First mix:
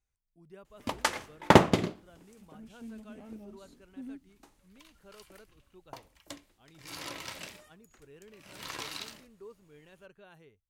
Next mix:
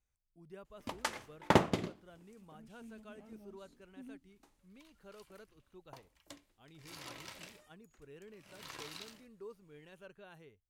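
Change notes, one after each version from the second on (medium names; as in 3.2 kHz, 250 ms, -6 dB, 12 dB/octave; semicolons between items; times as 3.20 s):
background -8.0 dB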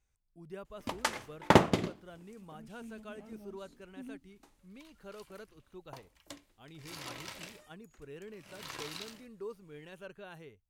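speech +6.5 dB; background +4.5 dB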